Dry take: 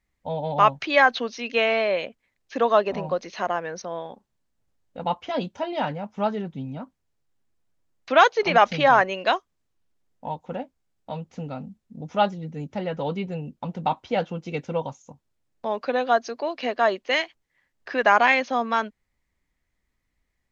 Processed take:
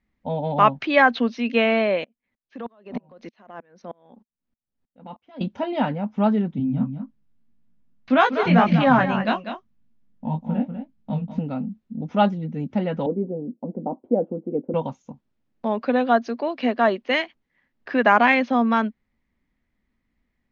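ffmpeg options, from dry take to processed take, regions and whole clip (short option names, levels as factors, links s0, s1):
-filter_complex "[0:a]asettb=1/sr,asplit=3[s0][s1][s2];[s0]atrim=end=2.044[s3];[s1]atrim=start=2.04:end=5.41,asetpts=PTS-STARTPTS,afade=t=in:d=0.004:c=qsin,afade=t=out:st=3.366:d=0.004:c=qsin,acompressor=threshold=0.0447:ratio=12:attack=3.2:release=140:knee=1:detection=peak,aeval=exprs='val(0)*pow(10,-36*if(lt(mod(-3.2*n/s,1),2*abs(-3.2)/1000),1-mod(-3.2*n/s,1)/(2*abs(-3.2)/1000),(mod(-3.2*n/s,1)-2*abs(-3.2)/1000)/(1-2*abs(-3.2)/1000))/20)':c=same[s4];[s2]atrim=start=5.406[s5];[s3][s4]acrossfade=d=0.004:c1=hsin:c2=qsin[s6];[s6][s5]acrossfade=d=0.004:c1=qsin:c2=hsin,asettb=1/sr,asplit=3[s7][s8][s9];[s7]atrim=end=6.584[s10];[s8]atrim=start=6.58:end=11.39,asetpts=PTS-STARTPTS,afade=t=in:d=0.004:c=qsin,afade=t=out:st=4.806:d=0.004:c=qsin,lowshelf=f=270:t=q:w=1.5:g=8,aecho=1:1:195:0.355,atrim=end_sample=212121,flanger=delay=17.5:depth=5.4:speed=1.8[s11];[s9]atrim=start=11.386[s12];[s10][s11]acrossfade=d=0.004:c1=hsin:c2=qsin[s13];[s13][s12]acrossfade=d=0.004:c1=qsin:c2=hsin,asettb=1/sr,asplit=3[s14][s15][s16];[s14]atrim=end=13.064[s17];[s15]atrim=start=13.06:end=14.74,asetpts=PTS-STARTPTS,afade=t=in:d=0.004:c=qsin,afade=t=out:st=1.676:d=0.004:c=qsin,asuperpass=centerf=430:order=4:qfactor=1.3,aemphasis=mode=reproduction:type=riaa[s18];[s16]atrim=start=14.736[s19];[s17][s18]acrossfade=d=0.004:c1=hsin:c2=qsin[s20];[s20][s19]acrossfade=d=0.004:c1=qsin:c2=hsin,lowpass=3600,equalizer=f=230:w=2.1:g=11.5,volume=1.12"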